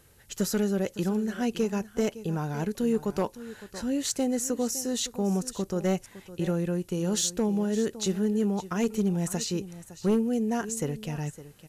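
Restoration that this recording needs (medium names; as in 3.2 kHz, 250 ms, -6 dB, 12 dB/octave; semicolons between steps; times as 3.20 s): clip repair -18 dBFS; expander -42 dBFS, range -21 dB; inverse comb 560 ms -15.5 dB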